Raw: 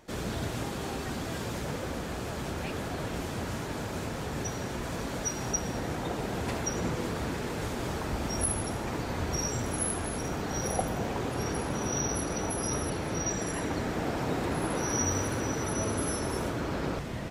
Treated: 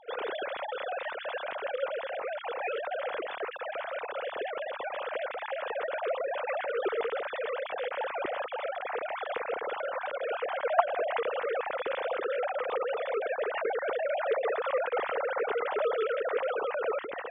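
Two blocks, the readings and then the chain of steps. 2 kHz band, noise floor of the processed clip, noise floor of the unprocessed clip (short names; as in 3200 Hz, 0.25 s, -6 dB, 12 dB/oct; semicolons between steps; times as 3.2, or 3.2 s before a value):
+3.0 dB, -40 dBFS, -36 dBFS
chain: sine-wave speech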